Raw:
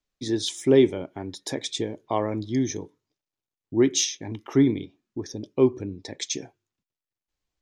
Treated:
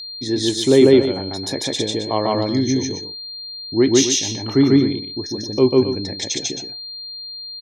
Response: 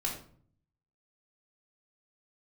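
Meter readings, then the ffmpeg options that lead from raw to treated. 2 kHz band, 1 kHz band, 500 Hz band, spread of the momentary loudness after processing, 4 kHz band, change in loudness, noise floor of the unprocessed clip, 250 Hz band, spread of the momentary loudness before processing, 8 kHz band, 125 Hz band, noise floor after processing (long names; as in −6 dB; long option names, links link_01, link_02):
+7.5 dB, +7.0 dB, +7.5 dB, 16 LU, +11.0 dB, +7.0 dB, below −85 dBFS, +7.5 dB, 16 LU, +7.5 dB, +7.0 dB, −33 dBFS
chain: -af "aecho=1:1:145.8|268.2:1|0.355,aeval=exprs='val(0)+0.02*sin(2*PI*4200*n/s)':channel_layout=same,volume=4dB"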